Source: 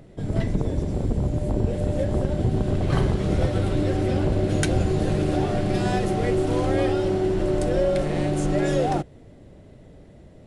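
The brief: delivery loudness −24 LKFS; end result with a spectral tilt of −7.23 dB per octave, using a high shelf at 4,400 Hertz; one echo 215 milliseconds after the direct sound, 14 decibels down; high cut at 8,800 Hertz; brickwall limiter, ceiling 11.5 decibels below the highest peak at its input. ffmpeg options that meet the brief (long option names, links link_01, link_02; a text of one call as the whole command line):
ffmpeg -i in.wav -af "lowpass=8800,highshelf=frequency=4400:gain=-7,alimiter=limit=-19dB:level=0:latency=1,aecho=1:1:215:0.2,volume=4dB" out.wav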